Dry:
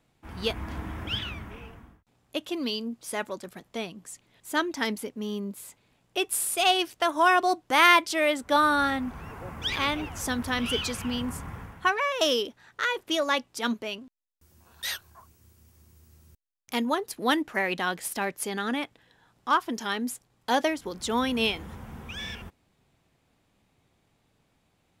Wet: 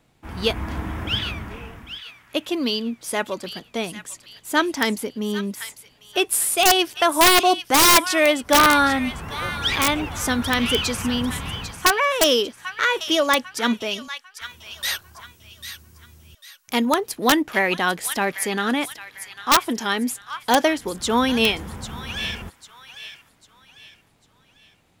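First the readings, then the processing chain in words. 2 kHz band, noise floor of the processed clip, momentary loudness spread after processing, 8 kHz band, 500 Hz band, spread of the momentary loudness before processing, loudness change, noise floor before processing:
+6.0 dB, -59 dBFS, 20 LU, +11.5 dB, +7.0 dB, 16 LU, +7.0 dB, -70 dBFS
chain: feedback echo behind a high-pass 797 ms, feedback 37%, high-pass 1.6 kHz, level -10 dB; integer overflow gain 13.5 dB; trim +7 dB

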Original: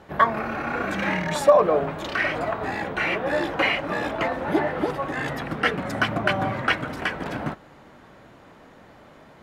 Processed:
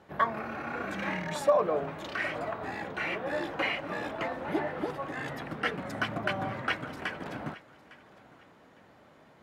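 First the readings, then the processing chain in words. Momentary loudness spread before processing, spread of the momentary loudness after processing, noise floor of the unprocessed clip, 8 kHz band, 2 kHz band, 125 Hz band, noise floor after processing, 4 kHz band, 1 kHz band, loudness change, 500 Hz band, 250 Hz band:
8 LU, 8 LU, -50 dBFS, -8.5 dB, -8.5 dB, -9.0 dB, -58 dBFS, -8.5 dB, -8.5 dB, -8.5 dB, -8.5 dB, -8.5 dB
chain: high-pass 71 Hz; thinning echo 856 ms, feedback 24%, level -19 dB; trim -8.5 dB

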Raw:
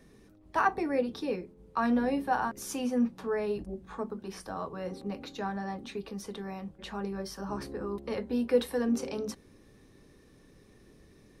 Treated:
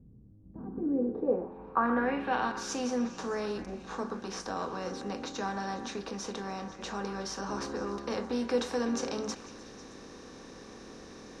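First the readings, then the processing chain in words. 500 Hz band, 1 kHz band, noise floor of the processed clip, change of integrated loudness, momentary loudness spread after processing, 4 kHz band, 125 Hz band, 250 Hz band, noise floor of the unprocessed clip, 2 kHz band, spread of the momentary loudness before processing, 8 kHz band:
-1.0 dB, -0.5 dB, -50 dBFS, -1.0 dB, 18 LU, +3.5 dB, -1.5 dB, -1.5 dB, -59 dBFS, 0.0 dB, 12 LU, +4.0 dB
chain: spectral levelling over time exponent 0.6; dynamic bell 7.3 kHz, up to +4 dB, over -56 dBFS, Q 2.5; repeats whose band climbs or falls 124 ms, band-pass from 1.2 kHz, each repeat 0.7 oct, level -7 dB; low-pass sweep 120 Hz -> 5.9 kHz, 0.35–2.74 s; trim -5.5 dB

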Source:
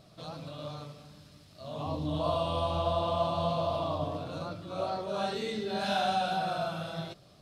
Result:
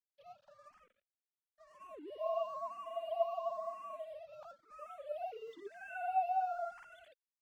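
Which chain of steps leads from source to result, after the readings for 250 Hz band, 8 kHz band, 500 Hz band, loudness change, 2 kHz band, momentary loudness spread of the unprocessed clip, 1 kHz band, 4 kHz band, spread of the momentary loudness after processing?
-25.0 dB, no reading, -8.5 dB, -7.5 dB, -11.0 dB, 14 LU, -6.5 dB, -24.0 dB, 20 LU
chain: formants replaced by sine waves; crossover distortion -56 dBFS; barber-pole phaser +0.99 Hz; trim -5.5 dB

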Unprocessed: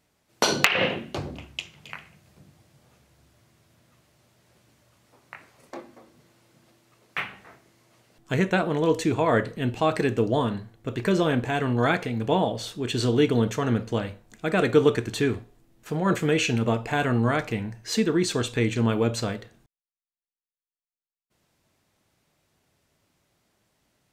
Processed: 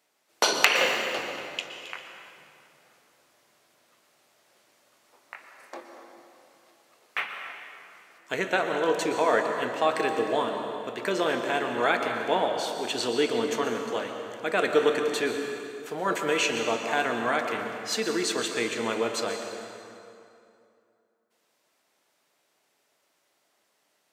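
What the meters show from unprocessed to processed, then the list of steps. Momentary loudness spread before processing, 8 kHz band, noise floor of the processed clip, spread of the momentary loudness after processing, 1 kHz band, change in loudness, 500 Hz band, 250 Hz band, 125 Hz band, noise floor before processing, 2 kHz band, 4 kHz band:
15 LU, +1.0 dB, -72 dBFS, 16 LU, +1.0 dB, -2.0 dB, -1.5 dB, -8.0 dB, -19.0 dB, under -85 dBFS, +1.0 dB, +1.0 dB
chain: high-pass 450 Hz 12 dB/octave; plate-style reverb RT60 2.6 s, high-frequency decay 0.75×, pre-delay 105 ms, DRR 4.5 dB

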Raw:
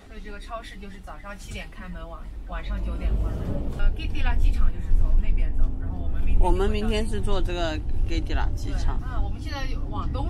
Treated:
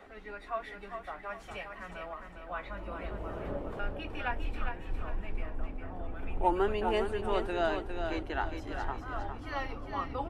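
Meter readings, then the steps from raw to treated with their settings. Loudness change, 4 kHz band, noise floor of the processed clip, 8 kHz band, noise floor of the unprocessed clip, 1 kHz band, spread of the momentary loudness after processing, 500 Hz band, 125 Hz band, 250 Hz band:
-7.5 dB, -8.0 dB, -49 dBFS, no reading, -39 dBFS, +0.5 dB, 12 LU, -1.0 dB, -14.5 dB, -7.0 dB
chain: three-band isolator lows -16 dB, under 340 Hz, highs -16 dB, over 2.4 kHz; on a send: feedback delay 406 ms, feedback 37%, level -6.5 dB

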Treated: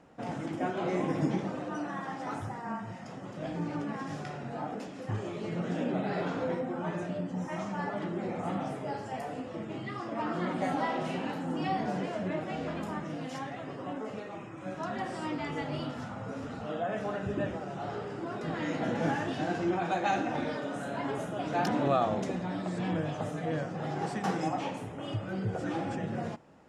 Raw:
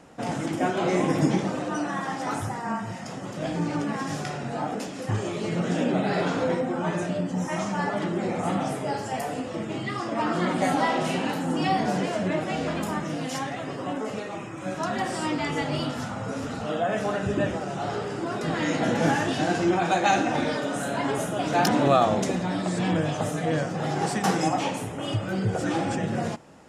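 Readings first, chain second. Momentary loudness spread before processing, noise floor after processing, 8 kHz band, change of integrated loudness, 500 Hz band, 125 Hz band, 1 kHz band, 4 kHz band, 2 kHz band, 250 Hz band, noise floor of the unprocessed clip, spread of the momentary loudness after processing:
8 LU, -42 dBFS, -15.0 dB, -7.5 dB, -7.0 dB, -7.0 dB, -7.5 dB, -11.0 dB, -8.5 dB, -7.0 dB, -35 dBFS, 9 LU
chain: low-pass 2.8 kHz 6 dB/octave; trim -7 dB

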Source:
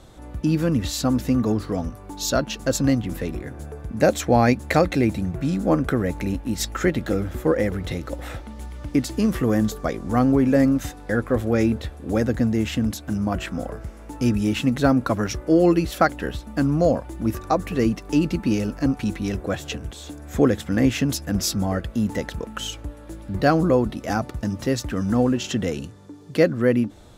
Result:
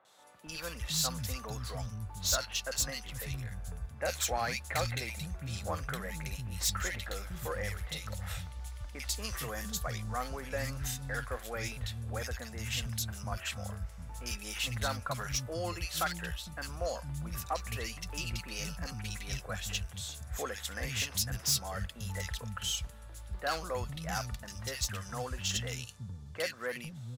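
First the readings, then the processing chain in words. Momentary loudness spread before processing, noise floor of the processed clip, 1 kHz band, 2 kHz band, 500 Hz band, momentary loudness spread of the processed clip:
13 LU, -48 dBFS, -12.0 dB, -8.0 dB, -18.0 dB, 9 LU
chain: amplifier tone stack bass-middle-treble 10-0-10; saturation -25.5 dBFS, distortion -13 dB; three bands offset in time mids, highs, lows 50/460 ms, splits 230/2000 Hz; tape noise reduction on one side only decoder only; trim +1.5 dB

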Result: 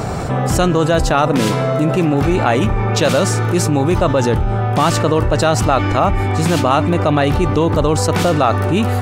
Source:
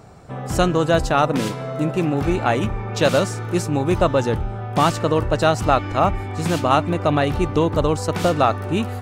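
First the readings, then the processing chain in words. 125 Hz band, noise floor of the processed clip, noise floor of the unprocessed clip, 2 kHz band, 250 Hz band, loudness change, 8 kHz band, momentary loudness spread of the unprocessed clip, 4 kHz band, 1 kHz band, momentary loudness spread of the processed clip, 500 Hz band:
+7.0 dB, -18 dBFS, -29 dBFS, +4.5 dB, +5.5 dB, +5.0 dB, +8.5 dB, 6 LU, +5.0 dB, +3.5 dB, 2 LU, +4.0 dB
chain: level flattener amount 70%; trim +1 dB

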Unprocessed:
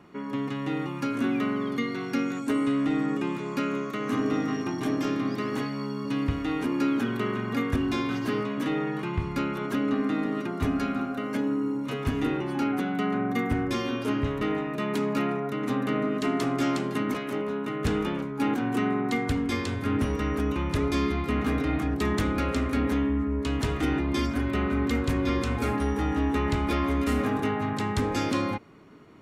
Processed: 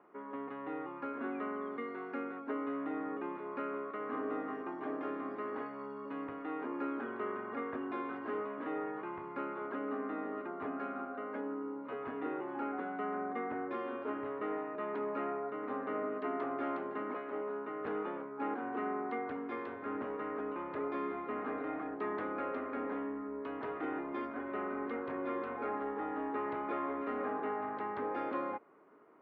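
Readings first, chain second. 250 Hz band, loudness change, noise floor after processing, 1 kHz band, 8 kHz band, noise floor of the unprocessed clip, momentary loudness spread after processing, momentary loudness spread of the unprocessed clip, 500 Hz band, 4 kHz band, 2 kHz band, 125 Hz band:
-14.5 dB, -11.0 dB, -45 dBFS, -5.5 dB, under -35 dB, -34 dBFS, 4 LU, 4 LU, -7.0 dB, under -20 dB, -11.0 dB, -28.0 dB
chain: Butterworth band-pass 810 Hz, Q 0.65; distance through air 210 m; trim -4.5 dB

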